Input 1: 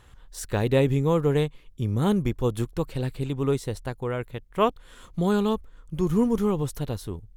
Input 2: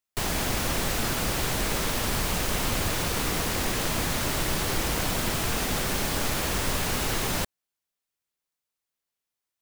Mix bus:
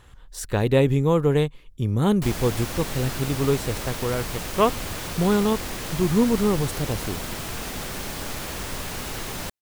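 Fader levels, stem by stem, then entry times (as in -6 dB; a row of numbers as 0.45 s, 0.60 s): +2.5 dB, -4.5 dB; 0.00 s, 2.05 s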